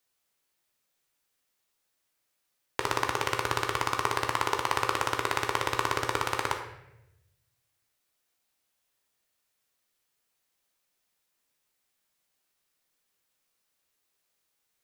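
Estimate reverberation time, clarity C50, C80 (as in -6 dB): 0.90 s, 6.5 dB, 9.0 dB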